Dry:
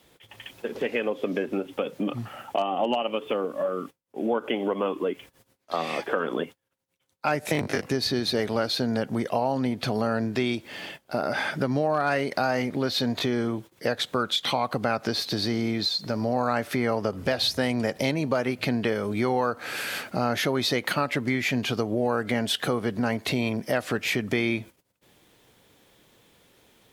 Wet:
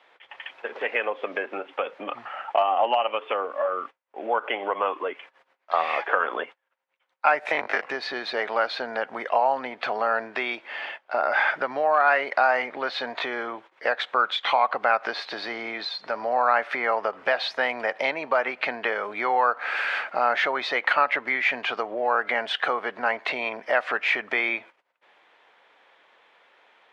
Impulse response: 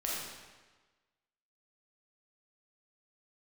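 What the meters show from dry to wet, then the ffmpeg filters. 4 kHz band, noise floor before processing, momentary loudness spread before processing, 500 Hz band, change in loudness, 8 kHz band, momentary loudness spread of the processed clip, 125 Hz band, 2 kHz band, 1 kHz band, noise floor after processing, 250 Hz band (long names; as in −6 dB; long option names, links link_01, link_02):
−3.5 dB, −71 dBFS, 6 LU, 0.0 dB, +1.5 dB, below −15 dB, 10 LU, below −25 dB, +6.5 dB, +6.5 dB, −70 dBFS, −13.5 dB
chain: -af "asuperpass=centerf=1300:order=4:qfactor=0.74,volume=7.5dB"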